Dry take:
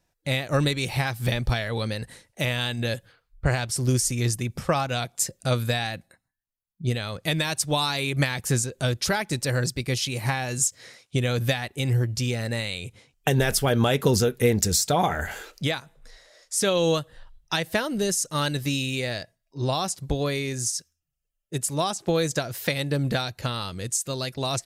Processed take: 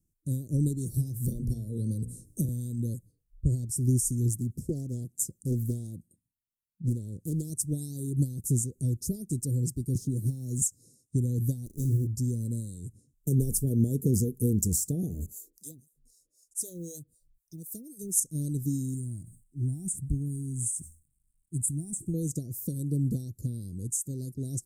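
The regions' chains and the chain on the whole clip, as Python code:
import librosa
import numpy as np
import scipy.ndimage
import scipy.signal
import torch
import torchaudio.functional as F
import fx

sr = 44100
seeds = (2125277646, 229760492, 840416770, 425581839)

y = fx.chain(x, sr, fx.hum_notches(base_hz=60, count=9),
    fx.band_squash(depth_pct=100), at=(0.94, 2.49))
y = fx.chain(y, sr, fx.highpass(hz=56.0, slope=6),
    fx.doppler_dist(depth_ms=0.71), at=(4.29, 7.5))
y = fx.chain(y, sr, fx.law_mismatch(coded='A'),
    fx.high_shelf(hz=3800.0, db=-6.0),
    fx.band_squash(depth_pct=100), at=(9.95, 10.62))
y = fx.chain(y, sr, fx.high_shelf(hz=4500.0, db=9.5),
    fx.room_flutter(wall_m=6.2, rt60_s=0.32),
    fx.running_max(window=5), at=(11.66, 12.07))
y = fx.chain(y, sr, fx.harmonic_tremolo(hz=3.9, depth_pct=100, crossover_hz=490.0),
    fx.tilt_eq(slope=2.5),
    fx.quant_float(bits=4), at=(15.26, 18.2))
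y = fx.chain(y, sr, fx.law_mismatch(coded='mu'),
    fx.curve_eq(hz=(120.0, 340.0, 510.0, 960.0, 1600.0, 4500.0, 8500.0, 14000.0), db=(0, -6, -22, 10, 11, -27, 4, -11)),
    fx.sustainer(db_per_s=130.0), at=(18.94, 22.14))
y = scipy.signal.sosfilt(scipy.signal.cheby2(4, 70, [970.0, 2700.0], 'bandstop', fs=sr, output='sos'), y)
y = fx.dynamic_eq(y, sr, hz=460.0, q=4.6, threshold_db=-53.0, ratio=4.0, max_db=3)
y = F.gain(torch.from_numpy(y), -1.5).numpy()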